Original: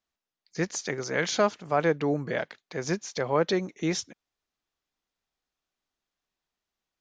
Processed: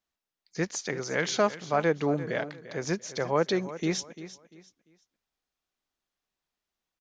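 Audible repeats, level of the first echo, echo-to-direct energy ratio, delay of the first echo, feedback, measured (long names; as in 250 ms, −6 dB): 2, −14.5 dB, −14.0 dB, 345 ms, 29%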